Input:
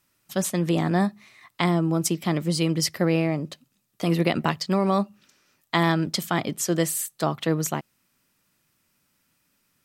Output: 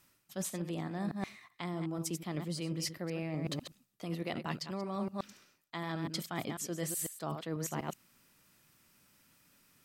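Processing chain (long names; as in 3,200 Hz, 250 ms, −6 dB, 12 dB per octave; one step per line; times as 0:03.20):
delay that plays each chunk backwards 124 ms, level −10 dB
reversed playback
downward compressor 16 to 1, threshold −36 dBFS, peak gain reduction 21.5 dB
reversed playback
level +2.5 dB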